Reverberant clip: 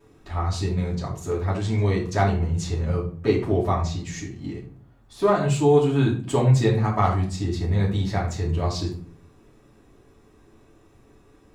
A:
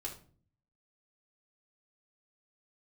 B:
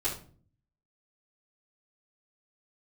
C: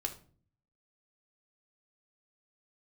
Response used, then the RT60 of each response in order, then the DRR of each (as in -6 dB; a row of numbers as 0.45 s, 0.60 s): B; 0.45 s, 0.45 s, 0.45 s; -2.5 dB, -11.0 dB, 3.0 dB